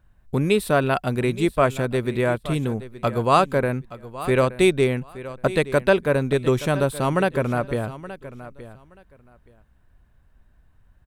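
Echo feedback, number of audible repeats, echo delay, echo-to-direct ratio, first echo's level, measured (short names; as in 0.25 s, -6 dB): 18%, 2, 0.873 s, -15.5 dB, -15.5 dB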